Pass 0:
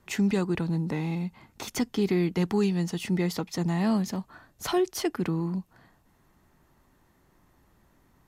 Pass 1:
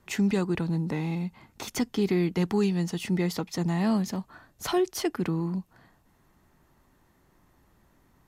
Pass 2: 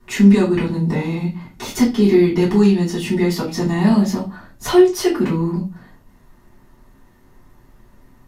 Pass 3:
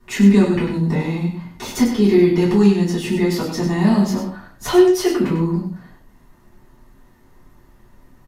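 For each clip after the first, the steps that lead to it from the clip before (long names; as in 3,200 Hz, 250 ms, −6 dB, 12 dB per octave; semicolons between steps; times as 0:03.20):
no processing that can be heard
convolution reverb RT60 0.30 s, pre-delay 3 ms, DRR −9 dB; level −2.5 dB
single-tap delay 98 ms −7.5 dB; level −1 dB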